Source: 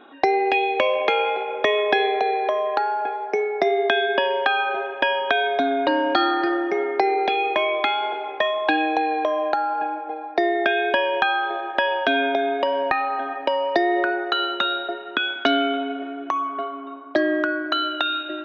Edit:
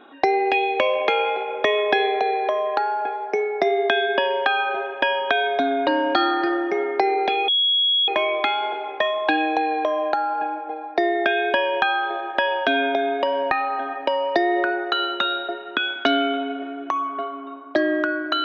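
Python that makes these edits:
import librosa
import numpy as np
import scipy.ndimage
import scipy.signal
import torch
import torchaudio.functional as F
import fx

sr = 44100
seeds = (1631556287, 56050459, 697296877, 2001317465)

y = fx.edit(x, sr, fx.insert_tone(at_s=7.48, length_s=0.6, hz=3330.0, db=-16.0), tone=tone)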